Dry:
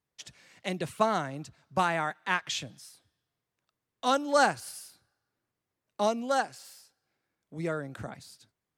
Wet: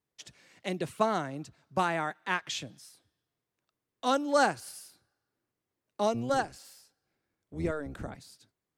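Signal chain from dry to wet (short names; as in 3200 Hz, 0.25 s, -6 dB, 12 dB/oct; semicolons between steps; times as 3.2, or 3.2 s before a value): 6.14–8.16 octaver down 1 oct, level -1 dB; bell 340 Hz +4.5 dB 1.2 oct; gain -2.5 dB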